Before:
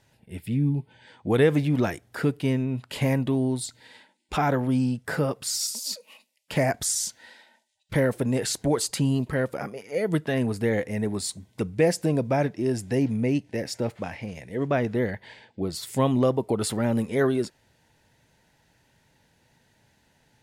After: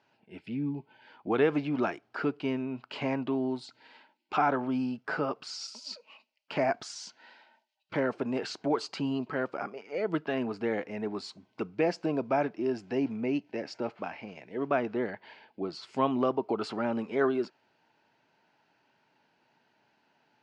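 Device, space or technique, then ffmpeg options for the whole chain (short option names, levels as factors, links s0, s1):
phone earpiece: -af "highpass=330,equalizer=f=510:t=q:w=4:g=-8,equalizer=f=1300:t=q:w=4:g=3,equalizer=f=1900:t=q:w=4:g=-9,equalizer=f=3600:t=q:w=4:g=-10,lowpass=f=4200:w=0.5412,lowpass=f=4200:w=1.3066"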